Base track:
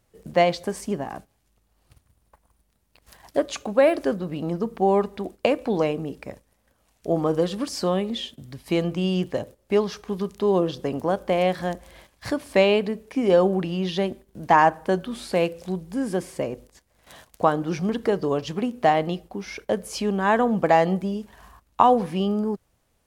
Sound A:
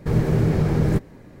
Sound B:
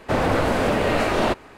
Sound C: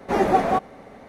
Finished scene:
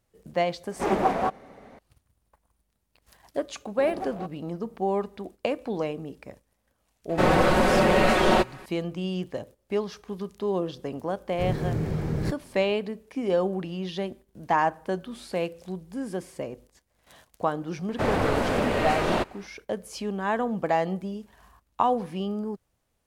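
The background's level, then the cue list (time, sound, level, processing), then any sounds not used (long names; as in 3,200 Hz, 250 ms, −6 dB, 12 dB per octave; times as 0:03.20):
base track −6.5 dB
0:00.71: mix in C −4.5 dB + highs frequency-modulated by the lows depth 0.37 ms
0:03.68: mix in C −16 dB + adaptive Wiener filter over 25 samples
0:07.09: mix in B −1 dB + comb filter 5.4 ms, depth 68%
0:11.33: mix in A −8.5 dB
0:17.90: mix in B −4.5 dB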